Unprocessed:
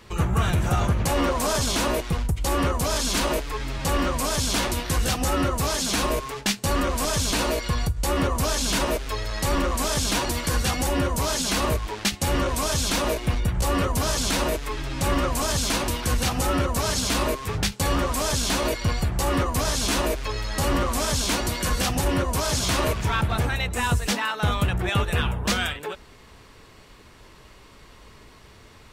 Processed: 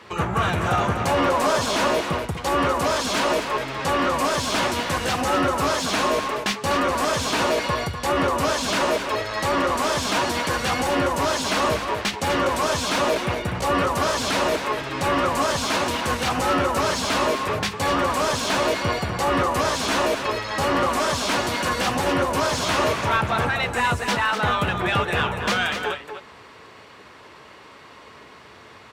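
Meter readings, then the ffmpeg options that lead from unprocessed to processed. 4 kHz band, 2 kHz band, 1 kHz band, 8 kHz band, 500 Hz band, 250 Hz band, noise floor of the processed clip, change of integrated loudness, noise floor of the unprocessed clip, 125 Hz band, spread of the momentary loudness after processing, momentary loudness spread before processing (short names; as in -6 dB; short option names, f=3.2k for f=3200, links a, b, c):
+1.0 dB, +5.0 dB, +6.0 dB, -3.5 dB, +4.5 dB, +0.5 dB, -46 dBFS, +2.0 dB, -49 dBFS, -4.5 dB, 3 LU, 3 LU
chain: -filter_complex "[0:a]highpass=f=73:w=0.5412,highpass=f=73:w=1.3066,asplit=2[a][b];[b]highpass=f=720:p=1,volume=15dB,asoftclip=type=tanh:threshold=-8.5dB[c];[a][c]amix=inputs=2:normalize=0,lowpass=f=1.7k:p=1,volume=-6dB,asplit=2[d][e];[e]aecho=0:1:246:0.398[f];[d][f]amix=inputs=2:normalize=0"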